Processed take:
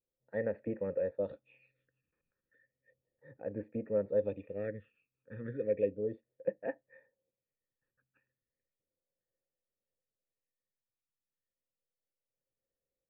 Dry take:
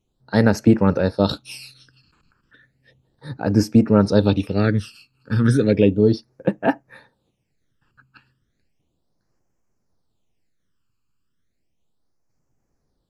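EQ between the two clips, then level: vocal tract filter e; -7.5 dB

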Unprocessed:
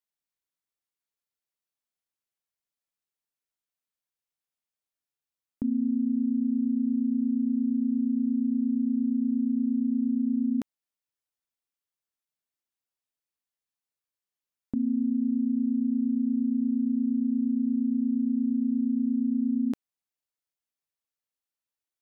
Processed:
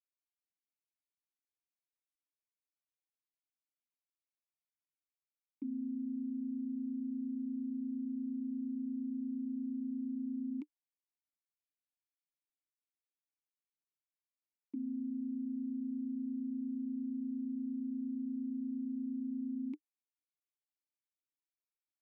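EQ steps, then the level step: vowel filter u; low shelf 410 Hz -9 dB; fixed phaser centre 310 Hz, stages 4; +3.5 dB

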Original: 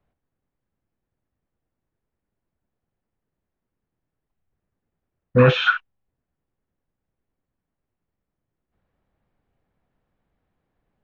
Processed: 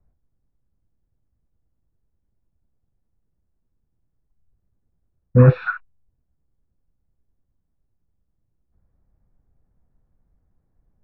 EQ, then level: running mean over 14 samples; low shelf 84 Hz +7.5 dB; low shelf 200 Hz +11 dB; -3.5 dB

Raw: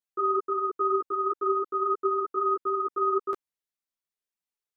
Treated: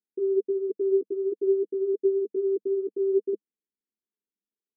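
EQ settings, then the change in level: elliptic band-pass 200–450 Hz, stop band 60 dB; air absorption 350 m; low shelf 300 Hz +6.5 dB; +5.0 dB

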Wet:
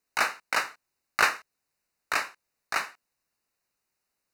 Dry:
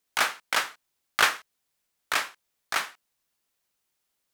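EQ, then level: Butterworth band-stop 3300 Hz, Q 3.9; high shelf 5600 Hz -6 dB; 0.0 dB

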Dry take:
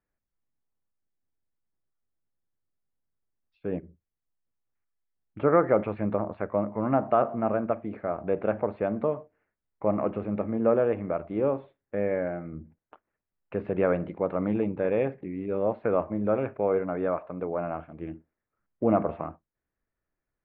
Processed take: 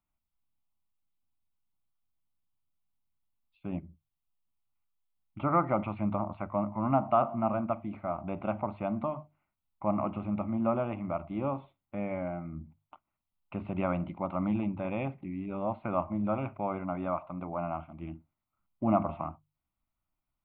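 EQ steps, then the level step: notches 50/100/150 Hz; fixed phaser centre 1700 Hz, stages 6; +1.5 dB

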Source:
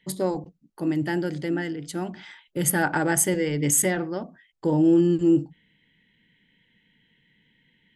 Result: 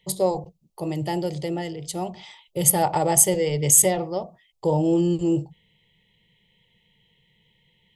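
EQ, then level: fixed phaser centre 650 Hz, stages 4; +6.5 dB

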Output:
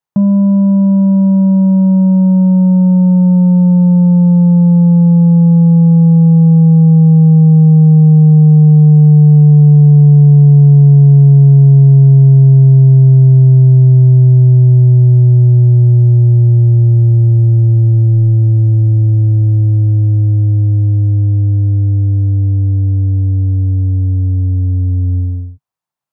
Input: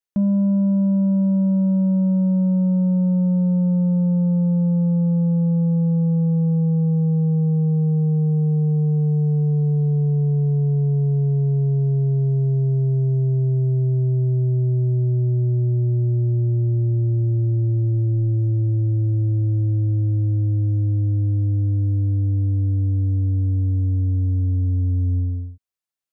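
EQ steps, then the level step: bell 140 Hz +14 dB 1.2 oct; bell 910 Hz +14.5 dB 1.2 oct; 0.0 dB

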